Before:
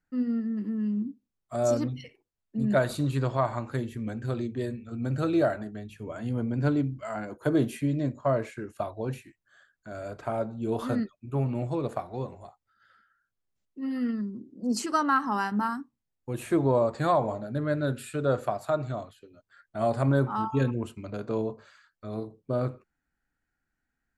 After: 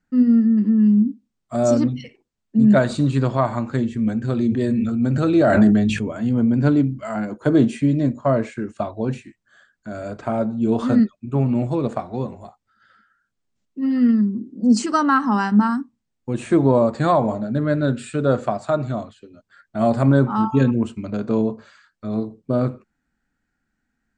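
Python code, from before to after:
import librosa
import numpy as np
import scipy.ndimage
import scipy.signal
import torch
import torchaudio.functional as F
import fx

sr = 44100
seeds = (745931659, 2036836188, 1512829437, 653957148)

y = fx.sustainer(x, sr, db_per_s=21.0, at=(4.42, 6.11))
y = scipy.signal.sosfilt(scipy.signal.butter(12, 8900.0, 'lowpass', fs=sr, output='sos'), y)
y = fx.peak_eq(y, sr, hz=220.0, db=8.5, octaves=0.68)
y = F.gain(torch.from_numpy(y), 6.0).numpy()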